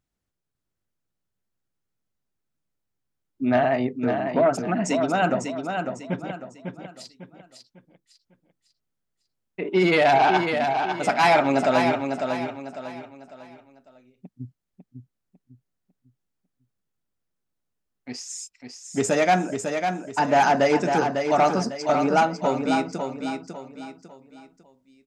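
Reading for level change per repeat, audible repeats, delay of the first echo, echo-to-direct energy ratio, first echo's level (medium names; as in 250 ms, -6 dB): -9.0 dB, 4, 550 ms, -5.5 dB, -6.0 dB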